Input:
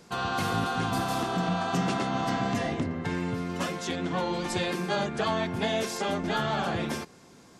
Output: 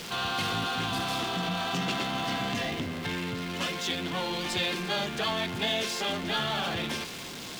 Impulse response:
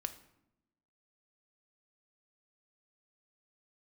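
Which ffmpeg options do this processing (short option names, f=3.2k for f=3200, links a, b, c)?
-af "aeval=exprs='val(0)+0.5*0.0266*sgn(val(0))':c=same,equalizer=f=3.2k:t=o:w=1.4:g=11,volume=-6.5dB"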